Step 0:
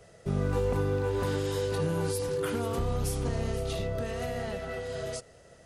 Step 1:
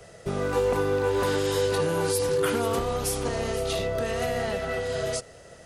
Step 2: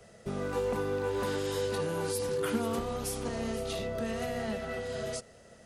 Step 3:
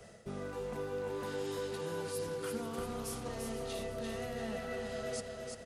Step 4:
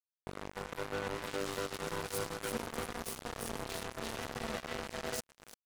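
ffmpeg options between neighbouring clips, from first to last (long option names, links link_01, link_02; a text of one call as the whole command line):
ffmpeg -i in.wav -filter_complex "[0:a]lowshelf=frequency=400:gain=-3,acrossover=split=270|850[link_01][link_02][link_03];[link_01]acompressor=threshold=-41dB:ratio=6[link_04];[link_04][link_02][link_03]amix=inputs=3:normalize=0,volume=8dB" out.wav
ffmpeg -i in.wav -af "equalizer=frequency=220:width=7.4:gain=14,volume=-7.5dB" out.wav
ffmpeg -i in.wav -af "areverse,acompressor=threshold=-39dB:ratio=6,areverse,aecho=1:1:343|686|1029|1372|1715|2058:0.562|0.27|0.13|0.0622|0.0299|0.0143,volume=1dB" out.wav
ffmpeg -i in.wav -filter_complex "[0:a]asplit=2[link_01][link_02];[link_02]asoftclip=type=tanh:threshold=-35dB,volume=-10dB[link_03];[link_01][link_03]amix=inputs=2:normalize=0,acrusher=bits=4:mix=0:aa=0.5,asoftclip=type=hard:threshold=-34.5dB,volume=7dB" out.wav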